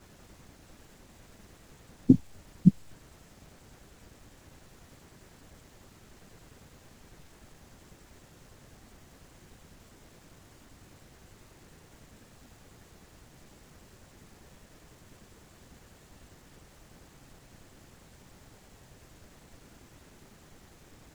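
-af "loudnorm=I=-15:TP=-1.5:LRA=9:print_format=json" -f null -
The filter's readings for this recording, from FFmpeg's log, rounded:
"input_i" : "-25.7",
"input_tp" : "-4.4",
"input_lra" : "24.4",
"input_thresh" : "-49.8",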